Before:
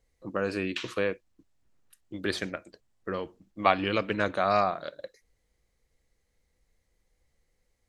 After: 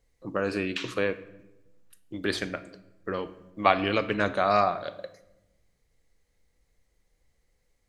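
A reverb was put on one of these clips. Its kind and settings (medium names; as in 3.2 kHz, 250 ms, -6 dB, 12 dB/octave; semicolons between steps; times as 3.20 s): simulated room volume 370 m³, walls mixed, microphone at 0.3 m; trim +1.5 dB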